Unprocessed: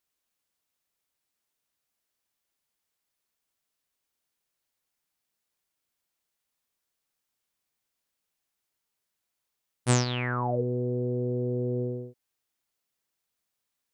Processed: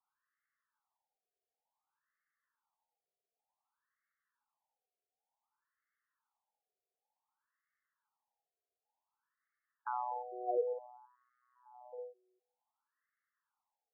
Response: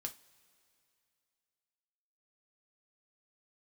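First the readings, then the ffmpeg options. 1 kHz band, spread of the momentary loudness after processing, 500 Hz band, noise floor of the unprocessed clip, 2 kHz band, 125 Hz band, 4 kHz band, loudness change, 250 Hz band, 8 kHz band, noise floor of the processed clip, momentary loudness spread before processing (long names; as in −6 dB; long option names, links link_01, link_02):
−4.0 dB, 17 LU, −9.0 dB, −83 dBFS, −20.5 dB, below −40 dB, below −40 dB, −10.5 dB, below −25 dB, below −35 dB, below −85 dBFS, 9 LU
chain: -filter_complex "[0:a]highpass=frequency=360:width=0.5412,highpass=frequency=360:width=1.3066,equalizer=frequency=370:width_type=q:width=4:gain=4,equalizer=frequency=590:width_type=q:width=4:gain=-10,equalizer=frequency=850:width_type=q:width=4:gain=9,equalizer=frequency=1800:width_type=q:width=4:gain=6,lowpass=frequency=2200:width=0.5412,lowpass=frequency=2200:width=1.3066,alimiter=level_in=1dB:limit=-24dB:level=0:latency=1:release=124,volume=-1dB,asplit=2[link_01][link_02];[1:a]atrim=start_sample=2205[link_03];[link_02][link_03]afir=irnorm=-1:irlink=0,volume=-15.5dB[link_04];[link_01][link_04]amix=inputs=2:normalize=0,afftfilt=real='re*between(b*sr/1024,520*pow(1600/520,0.5+0.5*sin(2*PI*0.55*pts/sr))/1.41,520*pow(1600/520,0.5+0.5*sin(2*PI*0.55*pts/sr))*1.41)':imag='im*between(b*sr/1024,520*pow(1600/520,0.5+0.5*sin(2*PI*0.55*pts/sr))/1.41,520*pow(1600/520,0.5+0.5*sin(2*PI*0.55*pts/sr))*1.41)':win_size=1024:overlap=0.75,volume=2dB"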